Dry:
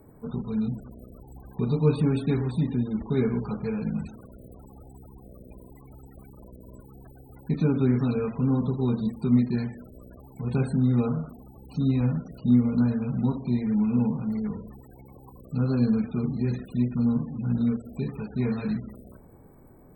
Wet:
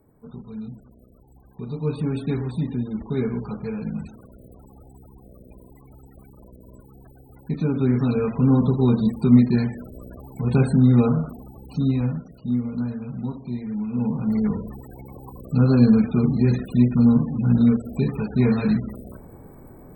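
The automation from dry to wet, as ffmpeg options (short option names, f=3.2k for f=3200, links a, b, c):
-af "volume=19dB,afade=t=in:st=1.65:d=0.62:silence=0.446684,afade=t=in:st=7.66:d=0.91:silence=0.446684,afade=t=out:st=11.3:d=1.05:silence=0.281838,afade=t=in:st=13.92:d=0.5:silence=0.251189"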